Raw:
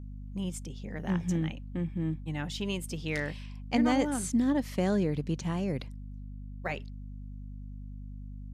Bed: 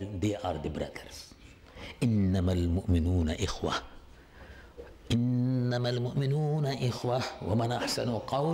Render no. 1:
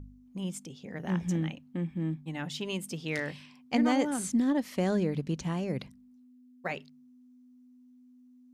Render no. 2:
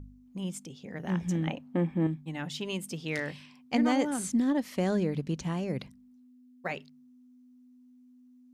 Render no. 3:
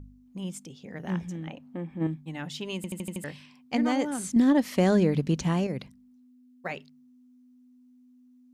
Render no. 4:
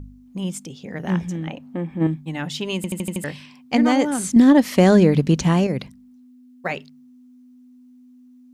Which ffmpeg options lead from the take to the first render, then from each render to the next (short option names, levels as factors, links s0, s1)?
-af "bandreject=f=50:t=h:w=4,bandreject=f=100:t=h:w=4,bandreject=f=150:t=h:w=4,bandreject=f=200:t=h:w=4"
-filter_complex "[0:a]asettb=1/sr,asplit=3[s0][s1][s2];[s0]atrim=end=1.474[s3];[s1]atrim=start=1.47:end=2.07,asetpts=PTS-STARTPTS,afade=t=in:d=0.004:c=qsin,afade=t=out:st=0.596:d=0.004:c=qsin,equalizer=f=710:t=o:w=2.7:g=13.5[s4];[s2]atrim=start=2.066[s5];[s3][s4]acrossfade=d=0.004:c1=hsin:c2=qsin[s6];[s6][s5]acrossfade=d=0.004:c1=qsin:c2=hsin"
-filter_complex "[0:a]asplit=3[s0][s1][s2];[s0]afade=t=out:st=1.24:d=0.02[s3];[s1]acompressor=threshold=0.00562:ratio=1.5:attack=3.2:release=140:knee=1:detection=peak,afade=t=in:st=1.24:d=0.02,afade=t=out:st=2:d=0.02[s4];[s2]afade=t=in:st=2:d=0.02[s5];[s3][s4][s5]amix=inputs=3:normalize=0,asettb=1/sr,asplit=3[s6][s7][s8];[s6]atrim=end=4.364[s9];[s7]atrim=start=4.36:end=5.67,asetpts=PTS-STARTPTS,afade=t=in:d=0.004:c=qsin,afade=t=out:st=1.306:d=0.004:c=qsin,acontrast=62[s10];[s8]atrim=start=5.666[s11];[s9][s10]acrossfade=d=0.004:c1=hsin:c2=qsin[s12];[s12][s11]acrossfade=d=0.004:c1=qsin:c2=hsin,asplit=7[s13][s14][s15][s16][s17][s18][s19];[s13]atrim=end=2.842[s20];[s14]atrim=start=2.758:end=2.842[s21];[s15]atrim=start=2.758:end=2.842[s22];[s16]atrim=start=2.758:end=2.842[s23];[s17]atrim=start=2.758:end=2.842[s24];[s18]atrim=start=2.758:end=2.842[s25];[s19]atrim=start=3.238[s26];[s20][s21]acrossfade=d=0.004:c1=hsin:c2=hsin[s27];[s27][s22]acrossfade=d=0.004:c1=hsin:c2=hsin[s28];[s28][s23]acrossfade=d=0.004:c1=hsin:c2=hsin[s29];[s29][s24]acrossfade=d=0.004:c1=hsin:c2=hsin[s30];[s30][s25]acrossfade=d=0.004:c1=hsin:c2=hsin[s31];[s31][s26]acrossfade=d=0.004:c1=hsin:c2=hsin"
-af "volume=2.66"